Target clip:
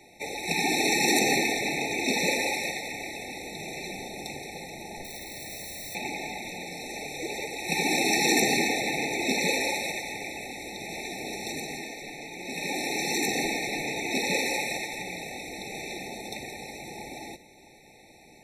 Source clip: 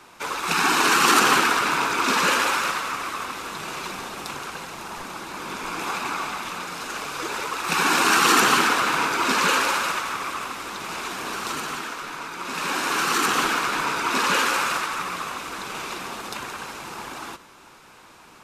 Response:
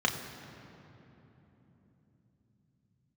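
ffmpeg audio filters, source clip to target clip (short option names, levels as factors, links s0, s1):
-filter_complex "[0:a]asettb=1/sr,asplit=3[s0][s1][s2];[s0]atrim=end=5.044[s3];[s1]atrim=start=5.04:end=5.95,asetpts=PTS-STARTPTS,afade=t=in:d=0.004:c=qsin,afade=t=out:st=0.906:d=0.004:c=qsin,aeval=exprs='(mod(33.5*val(0)+1,2)-1)/33.5':c=same[s4];[s2]atrim=start=5.946[s5];[s3][s4]acrossfade=d=0.004:c1=hsin:c2=qsin[s6];[s6][s5]acrossfade=d=0.004:c1=qsin:c2=hsin,afftfilt=real='re*eq(mod(floor(b*sr/1024/890),2),0)':imag='im*eq(mod(floor(b*sr/1024/890),2),0)':win_size=1024:overlap=0.75,volume=0.891"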